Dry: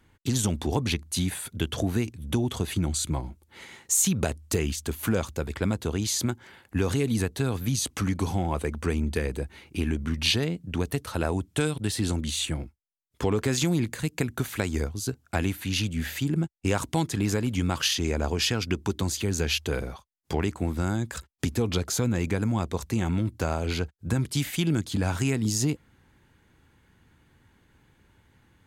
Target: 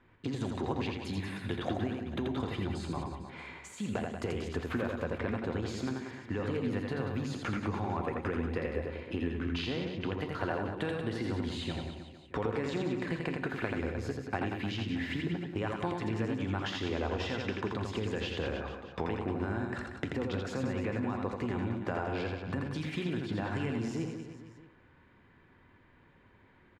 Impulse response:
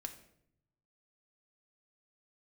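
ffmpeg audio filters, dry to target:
-filter_complex "[0:a]acompressor=threshold=-29dB:ratio=6,lowpass=1900,lowshelf=frequency=230:gain=-8,aecho=1:1:90|198|327.6|483.1|669.7:0.631|0.398|0.251|0.158|0.1,asplit=2[link_01][link_02];[1:a]atrim=start_sample=2205,highshelf=frequency=12000:gain=11[link_03];[link_02][link_03]afir=irnorm=-1:irlink=0,volume=3.5dB[link_04];[link_01][link_04]amix=inputs=2:normalize=0,asetrate=47187,aresample=44100,volume=-4dB"

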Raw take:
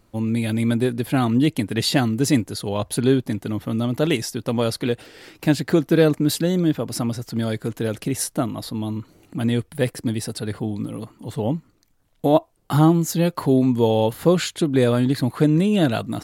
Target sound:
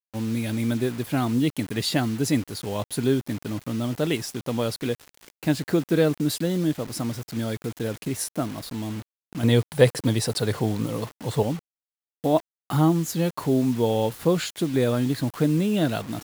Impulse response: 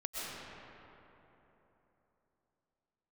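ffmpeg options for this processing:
-filter_complex "[0:a]asettb=1/sr,asplit=3[link_01][link_02][link_03];[link_01]atrim=end=9.434[link_04];[link_02]atrim=start=9.43:end=11.43,asetpts=PTS-STARTPTS,afade=type=in:duration=0.004:curve=qsin,afade=type=out:start_time=1.996:duration=0.004:curve=qsin,equalizer=frequency=125:width_type=o:width=1:gain=8,equalizer=frequency=500:width_type=o:width=1:gain=9,equalizer=frequency=1000:width_type=o:width=1:gain=9,equalizer=frequency=2000:width_type=o:width=1:gain=4,equalizer=frequency=4000:width_type=o:width=1:gain=8,equalizer=frequency=8000:width_type=o:width=1:gain=7[link_05];[link_03]atrim=start=11.426[link_06];[link_04][link_05]acrossfade=duration=0.004:curve1=hsin:curve2=qsin[link_07];[link_07][link_06]acrossfade=duration=0.004:curve1=qsin:curve2=hsin,acrusher=bits=5:mix=0:aa=0.000001,volume=-4.5dB"

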